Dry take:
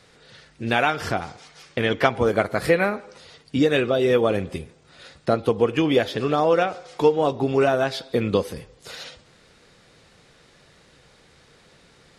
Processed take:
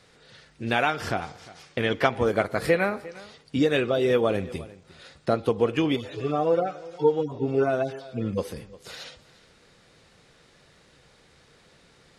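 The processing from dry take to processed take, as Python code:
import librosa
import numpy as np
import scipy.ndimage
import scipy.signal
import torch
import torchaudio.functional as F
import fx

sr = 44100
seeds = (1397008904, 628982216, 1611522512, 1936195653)

y = fx.hpss_only(x, sr, part='harmonic', at=(5.95, 8.37), fade=0.02)
y = y + 10.0 ** (-20.0 / 20.0) * np.pad(y, (int(354 * sr / 1000.0), 0))[:len(y)]
y = F.gain(torch.from_numpy(y), -3.0).numpy()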